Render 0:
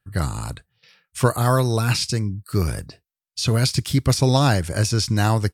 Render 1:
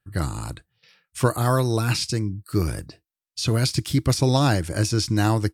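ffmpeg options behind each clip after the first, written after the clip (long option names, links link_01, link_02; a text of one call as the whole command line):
ffmpeg -i in.wav -af "equalizer=frequency=320:width_type=o:width=0.21:gain=9,volume=-2.5dB" out.wav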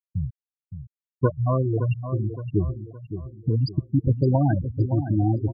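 ffmpeg -i in.wav -filter_complex "[0:a]afftfilt=real='re*gte(hypot(re,im),0.355)':imag='im*gte(hypot(re,im),0.355)':win_size=1024:overlap=0.75,asplit=2[link_01][link_02];[link_02]adelay=566,lowpass=frequency=3600:poles=1,volume=-10dB,asplit=2[link_03][link_04];[link_04]adelay=566,lowpass=frequency=3600:poles=1,volume=0.4,asplit=2[link_05][link_06];[link_06]adelay=566,lowpass=frequency=3600:poles=1,volume=0.4,asplit=2[link_07][link_08];[link_08]adelay=566,lowpass=frequency=3600:poles=1,volume=0.4[link_09];[link_03][link_05][link_07][link_09]amix=inputs=4:normalize=0[link_10];[link_01][link_10]amix=inputs=2:normalize=0" out.wav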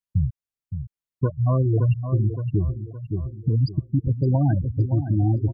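ffmpeg -i in.wav -af "lowshelf=frequency=200:gain=9,alimiter=limit=-12.5dB:level=0:latency=1:release=483" out.wav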